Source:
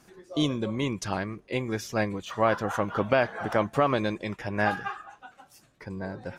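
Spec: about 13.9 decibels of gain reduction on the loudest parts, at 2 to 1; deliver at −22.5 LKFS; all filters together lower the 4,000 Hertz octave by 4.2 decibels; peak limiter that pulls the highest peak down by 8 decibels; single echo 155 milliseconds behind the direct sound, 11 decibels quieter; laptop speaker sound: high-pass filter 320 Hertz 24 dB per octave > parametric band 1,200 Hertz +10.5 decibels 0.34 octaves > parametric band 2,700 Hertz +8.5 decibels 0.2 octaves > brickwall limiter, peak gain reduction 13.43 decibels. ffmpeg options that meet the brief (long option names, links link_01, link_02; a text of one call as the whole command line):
ffmpeg -i in.wav -af "equalizer=frequency=4000:width_type=o:gain=-9,acompressor=threshold=-45dB:ratio=2,alimiter=level_in=7.5dB:limit=-24dB:level=0:latency=1,volume=-7.5dB,highpass=frequency=320:width=0.5412,highpass=frequency=320:width=1.3066,equalizer=frequency=1200:width_type=o:width=0.34:gain=10.5,equalizer=frequency=2700:width_type=o:width=0.2:gain=8.5,aecho=1:1:155:0.282,volume=26dB,alimiter=limit=-13dB:level=0:latency=1" out.wav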